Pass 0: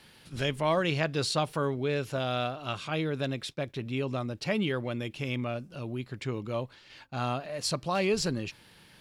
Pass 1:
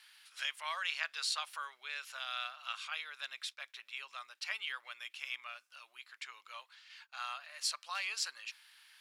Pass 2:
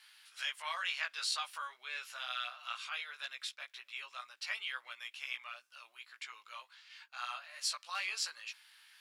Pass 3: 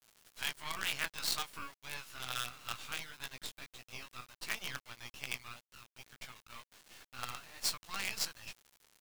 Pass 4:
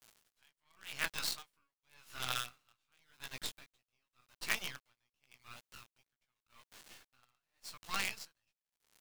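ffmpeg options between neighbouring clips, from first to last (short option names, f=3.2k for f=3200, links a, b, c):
-af "highpass=f=1.2k:w=0.5412,highpass=f=1.2k:w=1.3066,volume=-3dB"
-af "flanger=delay=15.5:depth=2.4:speed=2.1,volume=3dB"
-af "acrusher=bits=6:dc=4:mix=0:aa=0.000001,volume=1dB"
-af "aeval=exprs='val(0)*pow(10,-40*(0.5-0.5*cos(2*PI*0.88*n/s))/20)':c=same,volume=4dB"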